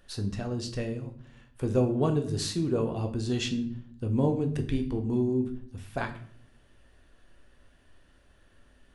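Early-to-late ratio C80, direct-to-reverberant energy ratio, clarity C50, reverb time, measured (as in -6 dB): 15.5 dB, 4.5 dB, 12.0 dB, 0.60 s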